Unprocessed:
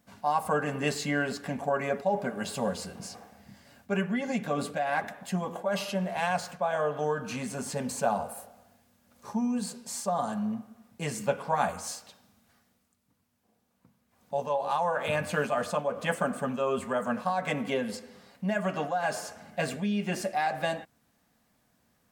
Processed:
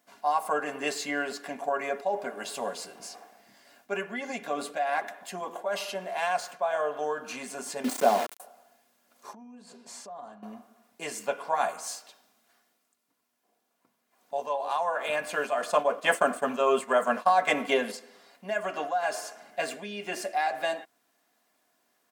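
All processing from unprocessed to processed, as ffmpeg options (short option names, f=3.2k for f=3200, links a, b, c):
-filter_complex "[0:a]asettb=1/sr,asplit=3[a][b][c];[a]atrim=end=7.844[d];[b]atrim=start=7.84:end=8.4,asetpts=PTS-STARTPTS,afade=t=in:d=0.004:c=qsin,afade=t=out:st=0.556:d=0.004:c=qsin,highpass=f=110:w=0.5412,highpass=f=110:w=1.3066,equalizer=f=280:t=o:w=1.7:g=15,aeval=exprs='val(0)*gte(abs(val(0)),0.0376)':c=same[e];[c]atrim=start=8.396[f];[d][e]acrossfade=d=0.004:c1=hsin:c2=qsin[g];[g][f]acrossfade=d=0.004:c1=qsin:c2=hsin,asettb=1/sr,asplit=3[h][i][j];[h]atrim=end=9.334[k];[i]atrim=start=9.33:end=10.43,asetpts=PTS-STARTPTS,afade=t=in:d=0.004:c=qsin,afade=t=out:st=1.096:d=0.004:c=qsin,aemphasis=mode=reproduction:type=bsi,acompressor=threshold=-39dB:ratio=6:attack=3.2:release=140:knee=1:detection=peak[l];[j]atrim=start=10.426[m];[k][l]acrossfade=d=0.004:c1=hsin:c2=qsin[n];[n][m]acrossfade=d=0.004:c1=qsin:c2=hsin,asettb=1/sr,asplit=3[o][p][q];[o]atrim=end=15.624[r];[p]atrim=start=15.62:end=17.92,asetpts=PTS-STARTPTS,afade=t=in:d=0.004:c=qsin,afade=t=out:st=2.296:d=0.004:c=qsin,acontrast=68,agate=range=-33dB:threshold=-27dB:ratio=3:release=100:detection=peak[s];[q]atrim=start=17.916[t];[r][s]acrossfade=d=0.004:c1=hsin:c2=qsin[u];[u][t]acrossfade=d=0.004:c1=qsin:c2=hsin,highpass=380,aecho=1:1:2.9:0.37"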